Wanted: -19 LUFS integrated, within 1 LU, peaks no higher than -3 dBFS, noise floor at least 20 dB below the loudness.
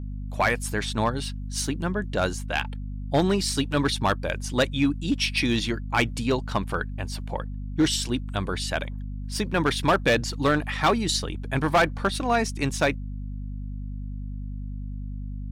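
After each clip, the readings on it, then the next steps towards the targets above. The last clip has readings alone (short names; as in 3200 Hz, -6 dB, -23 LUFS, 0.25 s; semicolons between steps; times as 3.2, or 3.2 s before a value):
clipped 0.7%; flat tops at -14.5 dBFS; hum 50 Hz; harmonics up to 250 Hz; hum level -30 dBFS; loudness -25.5 LUFS; peak -14.5 dBFS; loudness target -19.0 LUFS
-> clip repair -14.5 dBFS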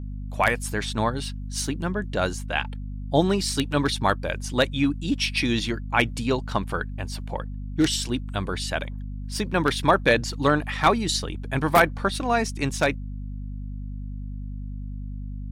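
clipped 0.0%; hum 50 Hz; harmonics up to 250 Hz; hum level -30 dBFS
-> notches 50/100/150/200/250 Hz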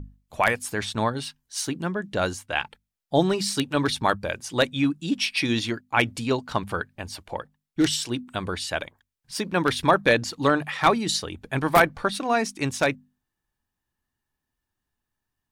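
hum none; loudness -25.0 LUFS; peak -4.5 dBFS; loudness target -19.0 LUFS
-> gain +6 dB; limiter -3 dBFS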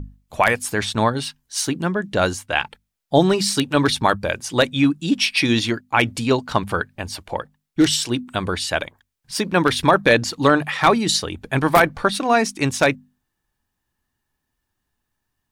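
loudness -19.5 LUFS; peak -3.0 dBFS; noise floor -78 dBFS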